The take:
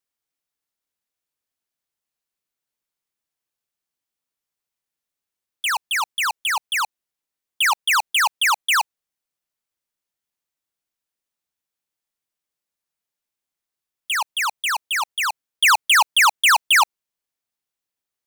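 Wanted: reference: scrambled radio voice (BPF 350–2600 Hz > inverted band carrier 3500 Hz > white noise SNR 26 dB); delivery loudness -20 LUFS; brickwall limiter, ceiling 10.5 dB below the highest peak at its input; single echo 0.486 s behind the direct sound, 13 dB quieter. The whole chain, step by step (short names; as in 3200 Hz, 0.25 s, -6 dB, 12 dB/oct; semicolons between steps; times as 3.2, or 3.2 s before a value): limiter -23.5 dBFS; BPF 350–2600 Hz; echo 0.486 s -13 dB; inverted band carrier 3500 Hz; white noise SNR 26 dB; gain +8 dB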